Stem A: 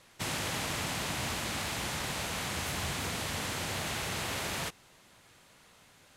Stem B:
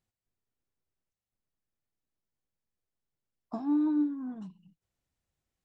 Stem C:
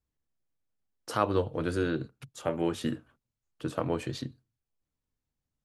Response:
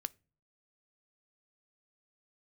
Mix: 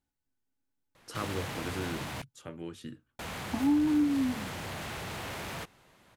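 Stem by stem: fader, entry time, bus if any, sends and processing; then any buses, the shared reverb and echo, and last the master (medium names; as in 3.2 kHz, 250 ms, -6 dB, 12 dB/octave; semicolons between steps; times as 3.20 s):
+0.5 dB, 0.95 s, muted 2.22–3.19 s, no send, peaking EQ 7.4 kHz -8.5 dB 2.4 oct; hard clipper -36 dBFS, distortion -11 dB
-3.0 dB, 0.00 s, no send, small resonant body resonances 270/850/1500 Hz, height 16 dB, ringing for 100 ms
-5.0 dB, 0.00 s, no send, peaking EQ 700 Hz -10 dB 1.4 oct; auto duck -10 dB, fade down 1.35 s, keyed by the second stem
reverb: none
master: compression 2.5:1, threshold -25 dBFS, peak gain reduction 5 dB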